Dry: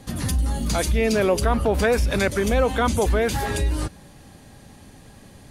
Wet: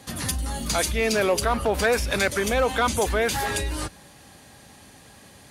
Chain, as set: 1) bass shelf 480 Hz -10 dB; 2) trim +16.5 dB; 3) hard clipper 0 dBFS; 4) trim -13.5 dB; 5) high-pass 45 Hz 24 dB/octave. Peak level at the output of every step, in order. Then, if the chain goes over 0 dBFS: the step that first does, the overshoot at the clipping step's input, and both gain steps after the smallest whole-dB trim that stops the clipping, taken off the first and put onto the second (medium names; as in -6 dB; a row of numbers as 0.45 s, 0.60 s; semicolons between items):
-9.5 dBFS, +7.0 dBFS, 0.0 dBFS, -13.5 dBFS, -10.0 dBFS; step 2, 7.0 dB; step 2 +9.5 dB, step 4 -6.5 dB